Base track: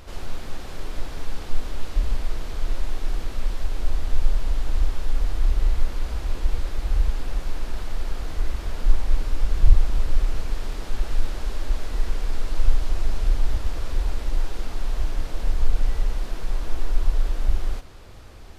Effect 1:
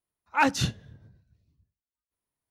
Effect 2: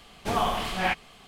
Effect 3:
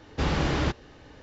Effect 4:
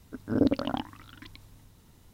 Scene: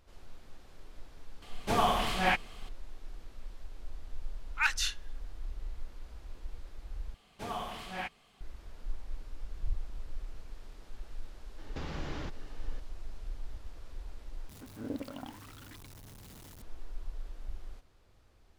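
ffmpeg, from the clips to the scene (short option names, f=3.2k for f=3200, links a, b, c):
-filter_complex "[2:a]asplit=2[a][b];[0:a]volume=-20dB[c];[1:a]highpass=f=1.4k:w=0.5412,highpass=f=1.4k:w=1.3066[d];[3:a]acompressor=threshold=-37dB:ratio=3:attack=12:release=139:knee=1:detection=peak[e];[4:a]aeval=exprs='val(0)+0.5*0.0316*sgn(val(0))':c=same[f];[c]asplit=3[g][h][i];[g]atrim=end=7.144[j];[b]atrim=end=1.27,asetpts=PTS-STARTPTS,volume=-12.5dB[k];[h]atrim=start=8.406:end=14.494[l];[f]atrim=end=2.13,asetpts=PTS-STARTPTS,volume=-15.5dB[m];[i]atrim=start=16.616[n];[a]atrim=end=1.27,asetpts=PTS-STARTPTS,volume=-1.5dB,afade=t=in:d=0.004:c=hsin,afade=t=out:st=1.266:d=0.004:c=hsin,adelay=1420[o];[d]atrim=end=2.5,asetpts=PTS-STARTPTS,volume=-1dB,afade=t=in:d=0.004:c=hsin,afade=t=out:st=2.496:d=0.004:c=hsin,adelay=4230[p];[e]atrim=end=1.22,asetpts=PTS-STARTPTS,volume=-4.5dB,afade=t=in:d=0.004:c=hsin,afade=t=out:st=1.216:d=0.004:c=hsin,adelay=11580[q];[j][k]acrossfade=d=0.004:c1=hsin:c2=hsin[r];[r][l]acrossfade=d=0.004:c1=hsin:c2=hsin[s];[s][m]acrossfade=d=0.004:c1=hsin:c2=hsin[t];[t][n]acrossfade=d=0.004:c1=hsin:c2=hsin[u];[u][o][p][q]amix=inputs=4:normalize=0"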